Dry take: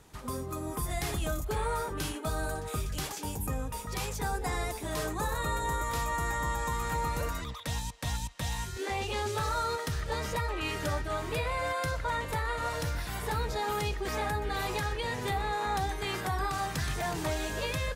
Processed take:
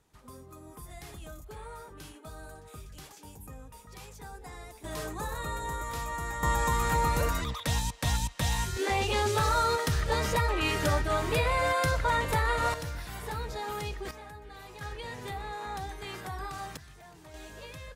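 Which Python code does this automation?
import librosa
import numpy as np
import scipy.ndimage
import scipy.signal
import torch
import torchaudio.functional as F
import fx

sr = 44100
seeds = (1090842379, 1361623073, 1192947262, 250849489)

y = fx.gain(x, sr, db=fx.steps((0.0, -12.5), (4.84, -3.5), (6.43, 5.0), (12.74, -4.0), (14.11, -14.5), (14.81, -6.5), (16.77, -19.0), (17.34, -12.0)))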